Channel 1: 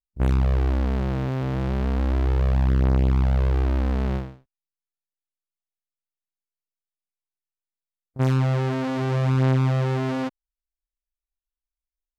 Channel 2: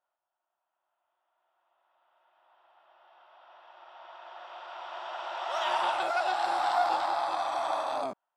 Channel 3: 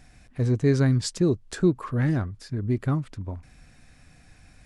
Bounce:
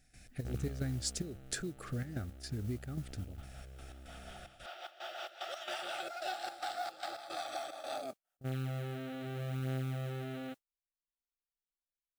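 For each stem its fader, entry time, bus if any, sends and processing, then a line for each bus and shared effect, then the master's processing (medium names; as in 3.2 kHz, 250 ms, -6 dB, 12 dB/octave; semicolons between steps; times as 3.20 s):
-14.0 dB, 0.25 s, no bus, no send, rippled Chebyshev low-pass 4.1 kHz, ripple 3 dB; auto duck -14 dB, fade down 1.55 s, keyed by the third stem
-0.5 dB, 0.00 s, bus A, no send, rotary cabinet horn 5.5 Hz
-5.0 dB, 0.00 s, bus A, no send, none
bus A: 0.0 dB, trance gate ".xx.x.xxx.xx" 111 bpm -12 dB; compression 4:1, threshold -36 dBFS, peak gain reduction 12 dB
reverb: none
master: Butterworth band-stop 1 kHz, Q 2.4; treble shelf 4.6 kHz +9.5 dB; modulation noise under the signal 24 dB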